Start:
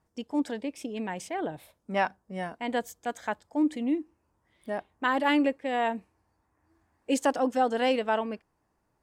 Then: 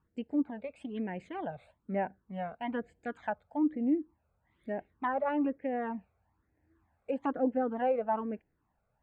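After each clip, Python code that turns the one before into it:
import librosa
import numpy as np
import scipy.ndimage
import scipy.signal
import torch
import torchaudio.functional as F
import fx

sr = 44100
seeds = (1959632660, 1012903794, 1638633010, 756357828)

y = np.convolve(x, np.full(8, 1.0 / 8))[:len(x)]
y = fx.phaser_stages(y, sr, stages=12, low_hz=300.0, high_hz=1200.0, hz=1.1, feedback_pct=0)
y = fx.env_lowpass_down(y, sr, base_hz=1200.0, full_db=-29.5)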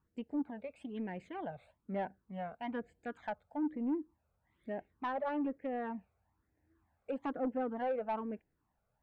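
y = 10.0 ** (-24.5 / 20.0) * np.tanh(x / 10.0 ** (-24.5 / 20.0))
y = y * librosa.db_to_amplitude(-3.5)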